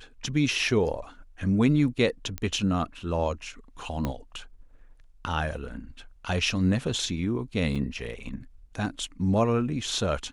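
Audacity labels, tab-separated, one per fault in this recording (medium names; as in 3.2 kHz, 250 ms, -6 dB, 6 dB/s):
2.380000	2.380000	pop -16 dBFS
4.050000	4.050000	pop -15 dBFS
7.750000	7.760000	dropout 5.7 ms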